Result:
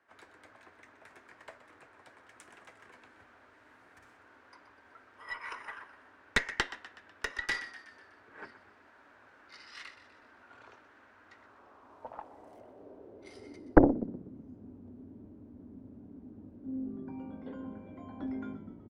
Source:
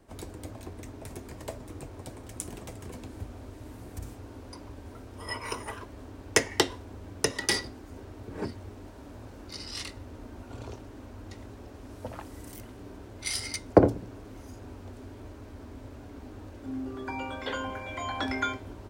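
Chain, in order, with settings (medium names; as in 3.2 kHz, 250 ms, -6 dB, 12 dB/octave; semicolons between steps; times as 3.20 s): frequency-shifting echo 124 ms, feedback 53%, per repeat -49 Hz, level -13 dB; band-pass sweep 1.6 kHz -> 210 Hz, 11.24–14.31 s; Chebyshev shaper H 4 -8 dB, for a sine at -7 dBFS; trim +1.5 dB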